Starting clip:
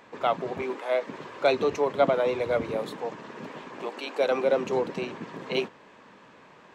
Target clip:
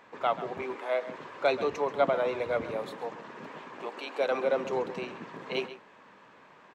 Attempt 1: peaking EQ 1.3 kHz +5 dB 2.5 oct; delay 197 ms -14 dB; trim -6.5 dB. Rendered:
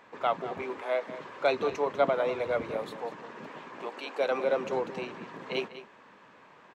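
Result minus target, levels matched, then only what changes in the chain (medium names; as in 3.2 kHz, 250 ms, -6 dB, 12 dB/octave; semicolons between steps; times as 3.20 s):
echo 63 ms late
change: delay 134 ms -14 dB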